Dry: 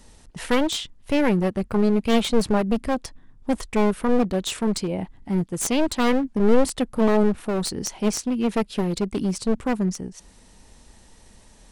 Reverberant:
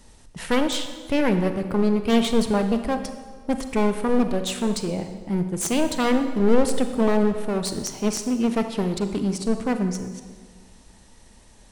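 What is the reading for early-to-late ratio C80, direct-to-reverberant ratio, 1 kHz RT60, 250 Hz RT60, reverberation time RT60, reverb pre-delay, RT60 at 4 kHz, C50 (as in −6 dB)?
10.5 dB, 7.5 dB, 1.5 s, 1.8 s, 1.6 s, 32 ms, 1.2 s, 8.5 dB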